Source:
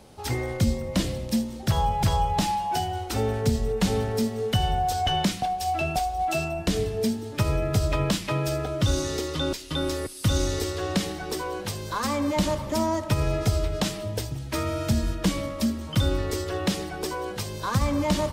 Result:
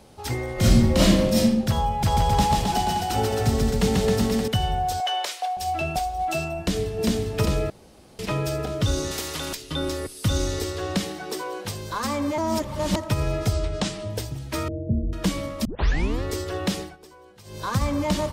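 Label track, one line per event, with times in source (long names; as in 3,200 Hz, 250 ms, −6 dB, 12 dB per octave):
0.540000	1.410000	thrown reverb, RT60 0.91 s, DRR −9.5 dB
1.930000	4.480000	bouncing-ball delay first gap 140 ms, each gap 0.9×, echoes 5, each echo −2 dB
5.000000	5.570000	inverse Chebyshev high-pass filter stop band from 240 Hz
6.580000	7.050000	delay throw 400 ms, feedback 65%, level −1 dB
7.700000	8.190000	fill with room tone
9.110000	9.550000	every bin compressed towards the loudest bin 2 to 1
11.050000	11.640000	high-pass filter 130 Hz → 310 Hz
12.380000	12.960000	reverse
13.530000	14.100000	low-pass filter 9,000 Hz 24 dB per octave
14.680000	15.130000	Butterworth low-pass 590 Hz 48 dB per octave
15.650000	15.650000	tape start 0.58 s
16.790000	17.610000	duck −18 dB, fades 0.18 s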